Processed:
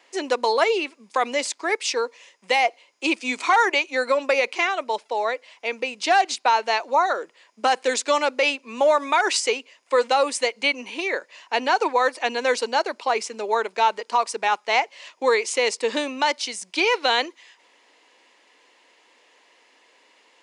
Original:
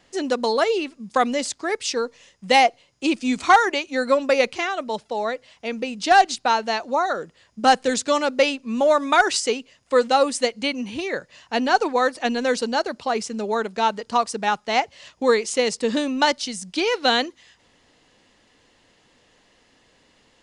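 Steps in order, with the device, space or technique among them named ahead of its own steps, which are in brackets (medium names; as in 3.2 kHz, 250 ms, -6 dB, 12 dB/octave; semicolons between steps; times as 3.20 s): laptop speaker (high-pass 330 Hz 24 dB/octave; peaking EQ 970 Hz +7 dB 0.27 oct; peaking EQ 2.3 kHz +7 dB 0.47 oct; peak limiter -9.5 dBFS, peak gain reduction 8.5 dB)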